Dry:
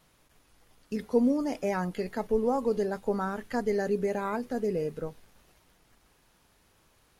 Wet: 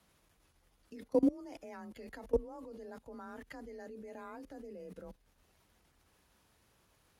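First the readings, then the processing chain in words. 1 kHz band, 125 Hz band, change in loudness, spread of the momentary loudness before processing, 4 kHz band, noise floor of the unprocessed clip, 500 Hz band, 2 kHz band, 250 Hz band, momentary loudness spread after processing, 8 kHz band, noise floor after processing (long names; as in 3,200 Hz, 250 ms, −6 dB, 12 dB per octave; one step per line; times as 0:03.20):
−16.0 dB, −16.0 dB, −9.5 dB, 9 LU, −13.0 dB, −66 dBFS, −10.5 dB, −15.0 dB, −8.5 dB, 19 LU, below −10 dB, −72 dBFS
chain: output level in coarse steps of 23 dB
frequency shifter +30 Hz
level −1.5 dB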